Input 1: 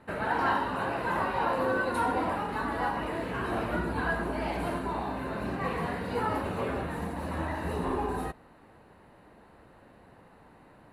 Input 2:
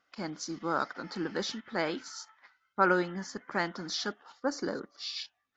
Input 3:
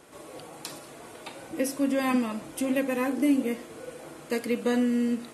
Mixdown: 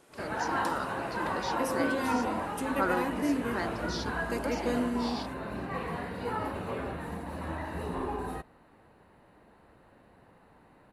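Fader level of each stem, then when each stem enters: -3.5, -5.0, -6.5 dB; 0.10, 0.00, 0.00 s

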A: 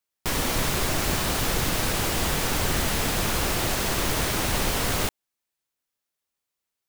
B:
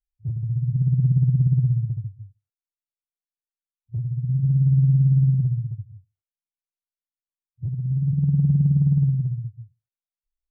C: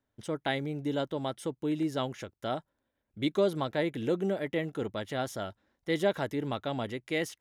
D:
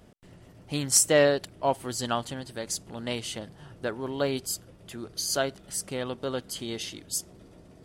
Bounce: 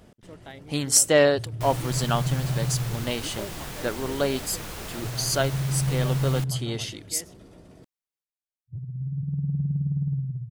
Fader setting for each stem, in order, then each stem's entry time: -12.0, -8.0, -13.0, +2.5 dB; 1.35, 1.10, 0.00, 0.00 s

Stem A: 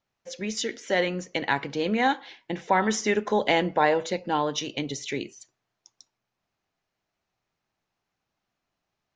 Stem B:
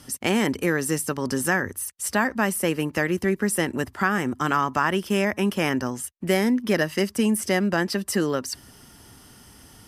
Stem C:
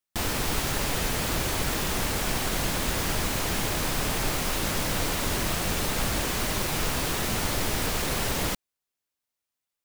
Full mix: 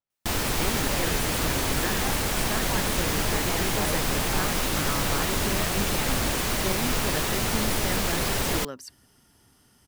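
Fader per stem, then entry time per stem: -14.5, -11.5, +1.5 dB; 0.00, 0.35, 0.10 s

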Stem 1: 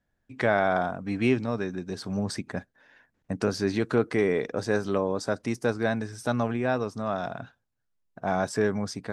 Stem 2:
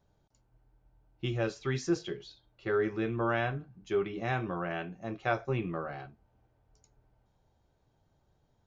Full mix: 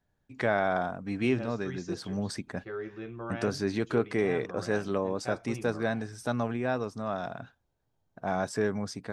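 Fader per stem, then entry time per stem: -3.5, -8.5 dB; 0.00, 0.00 s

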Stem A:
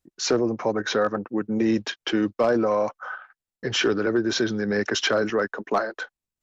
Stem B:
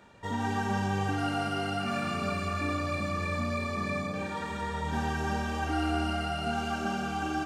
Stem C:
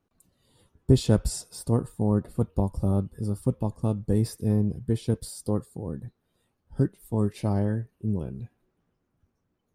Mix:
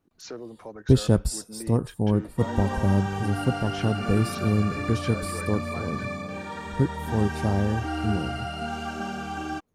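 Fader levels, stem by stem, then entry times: -16.5, -0.5, +1.0 dB; 0.00, 2.15, 0.00 s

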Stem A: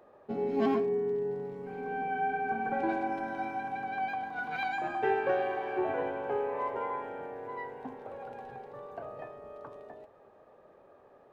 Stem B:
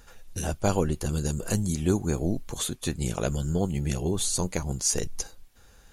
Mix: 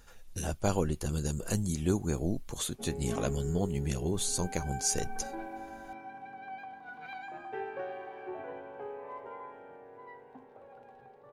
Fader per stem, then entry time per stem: -10.0, -4.5 dB; 2.50, 0.00 s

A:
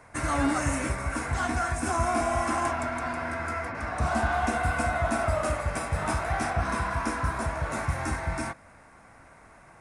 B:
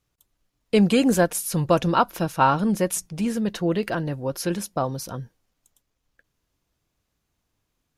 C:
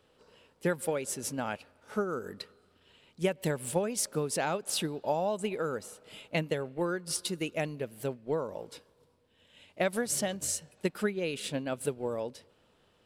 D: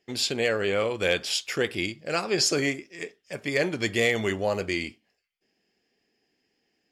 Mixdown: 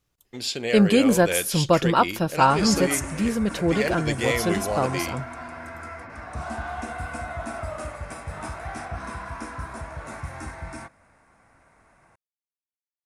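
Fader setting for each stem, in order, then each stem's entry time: -6.0 dB, +0.5 dB, off, -2.0 dB; 2.35 s, 0.00 s, off, 0.25 s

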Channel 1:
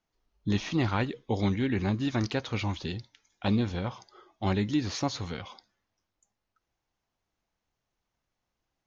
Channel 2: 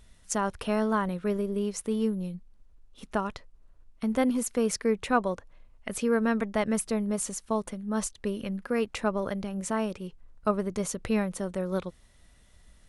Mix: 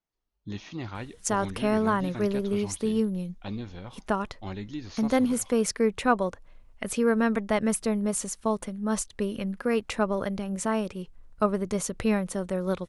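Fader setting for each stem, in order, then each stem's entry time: -9.0, +2.0 dB; 0.00, 0.95 s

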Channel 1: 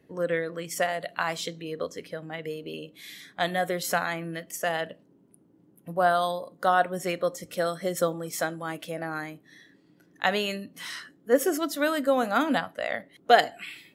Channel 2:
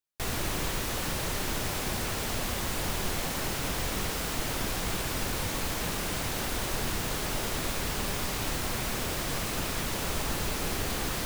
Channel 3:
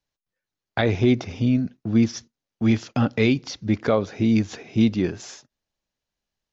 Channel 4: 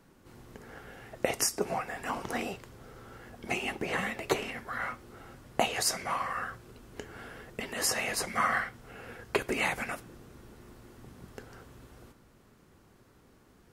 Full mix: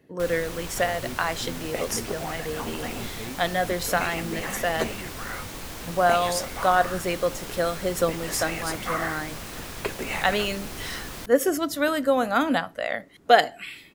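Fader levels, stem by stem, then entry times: +2.0, -5.5, -19.5, -1.5 dB; 0.00, 0.00, 0.00, 0.50 s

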